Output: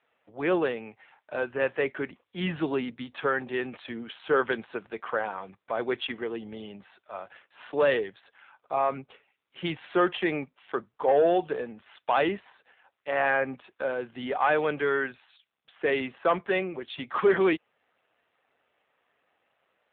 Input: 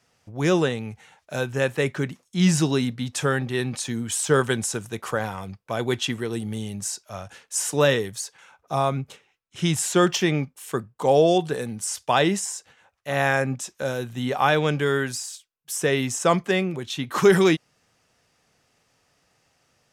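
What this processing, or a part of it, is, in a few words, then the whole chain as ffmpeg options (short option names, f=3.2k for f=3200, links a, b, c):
telephone: -af "highpass=370,lowpass=3.1k,asoftclip=type=tanh:threshold=-13.5dB" -ar 8000 -c:a libopencore_amrnb -b:a 7400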